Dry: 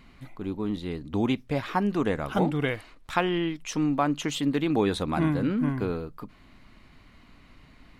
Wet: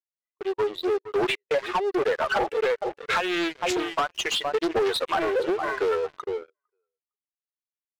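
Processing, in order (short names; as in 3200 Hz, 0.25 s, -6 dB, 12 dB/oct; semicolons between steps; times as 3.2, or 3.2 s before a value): per-bin expansion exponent 2; in parallel at +1 dB: vocal rider within 3 dB 0.5 s; on the sum: low-pass opened by the level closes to 2500 Hz, open at -18.5 dBFS; brick-wall FIR high-pass 350 Hz; gate with hold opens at -45 dBFS; on a send: feedback echo 0.456 s, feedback 16%, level -20 dB; on the sum: harmonic tremolo 1.1 Hz, depth 70%, crossover 640 Hz; compressor 8:1, threshold -40 dBFS, peak gain reduction 23.5 dB; sample leveller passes 5; high shelf 5500 Hz -8.5 dB; Doppler distortion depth 0.35 ms; gain +7 dB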